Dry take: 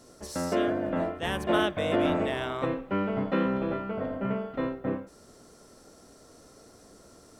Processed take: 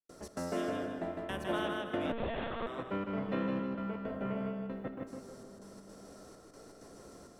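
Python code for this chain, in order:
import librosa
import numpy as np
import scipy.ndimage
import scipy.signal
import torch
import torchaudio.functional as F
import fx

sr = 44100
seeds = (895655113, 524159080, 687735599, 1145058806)

y = fx.step_gate(x, sr, bpm=163, pattern='.xx.xxxxx.', floor_db=-60.0, edge_ms=4.5)
y = fx.echo_feedback(y, sr, ms=156, feedback_pct=34, wet_db=-4.0)
y = fx.rev_freeverb(y, sr, rt60_s=3.2, hf_ratio=0.35, predelay_ms=10, drr_db=10.5)
y = fx.lpc_monotone(y, sr, seeds[0], pitch_hz=230.0, order=10, at=(2.12, 2.67))
y = fx.band_squash(y, sr, depth_pct=40)
y = y * 10.0 ** (-8.5 / 20.0)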